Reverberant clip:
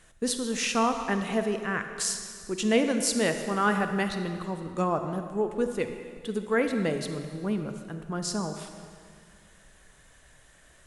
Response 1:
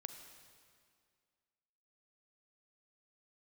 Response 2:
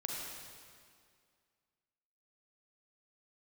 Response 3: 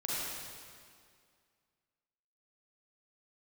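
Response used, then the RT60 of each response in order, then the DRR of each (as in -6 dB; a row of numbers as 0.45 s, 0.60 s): 1; 2.1 s, 2.1 s, 2.1 s; 6.5 dB, -2.0 dB, -7.5 dB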